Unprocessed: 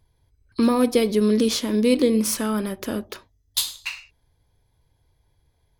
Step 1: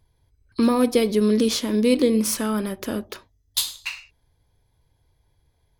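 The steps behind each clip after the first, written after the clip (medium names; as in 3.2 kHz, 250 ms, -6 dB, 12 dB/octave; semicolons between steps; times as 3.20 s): no audible change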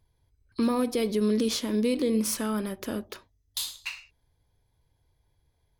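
peak limiter -12.5 dBFS, peak gain reduction 7 dB; trim -5 dB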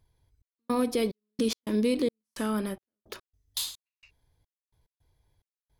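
trance gate "xxx..xxx..x." 108 bpm -60 dB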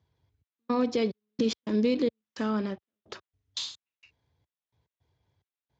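Speex 34 kbps 16 kHz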